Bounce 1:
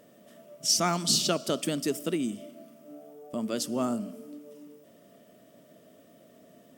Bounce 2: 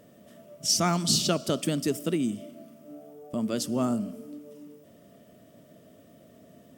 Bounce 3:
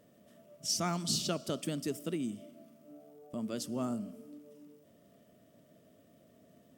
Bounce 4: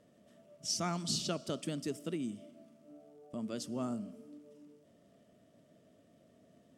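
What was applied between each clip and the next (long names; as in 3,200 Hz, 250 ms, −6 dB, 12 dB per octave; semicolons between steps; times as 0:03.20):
parametric band 72 Hz +12.5 dB 2.1 octaves
surface crackle 140 per second −54 dBFS; level −8.5 dB
low-pass filter 9,300 Hz 12 dB per octave; level −2 dB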